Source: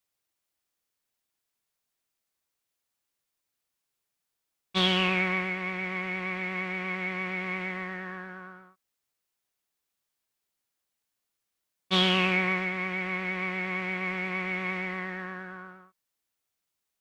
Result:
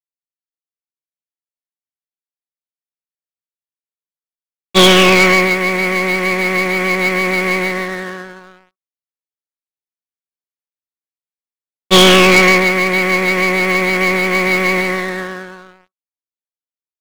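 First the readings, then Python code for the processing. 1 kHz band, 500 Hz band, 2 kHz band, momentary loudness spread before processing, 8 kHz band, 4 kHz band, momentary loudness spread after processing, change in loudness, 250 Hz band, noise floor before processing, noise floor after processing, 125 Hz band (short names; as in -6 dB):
+16.5 dB, +21.0 dB, +16.0 dB, 16 LU, +29.0 dB, +15.5 dB, 15 LU, +17.0 dB, +16.0 dB, -84 dBFS, under -85 dBFS, +14.0 dB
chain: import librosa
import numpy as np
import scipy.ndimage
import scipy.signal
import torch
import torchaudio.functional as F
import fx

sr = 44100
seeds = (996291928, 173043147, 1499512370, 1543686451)

y = fx.graphic_eq(x, sr, hz=(125, 250, 500, 1000, 2000, 4000), db=(-4, 12, 11, 4, 5, 4))
y = fx.leveller(y, sr, passes=5)
y = fx.upward_expand(y, sr, threshold_db=-19.0, expansion=2.5)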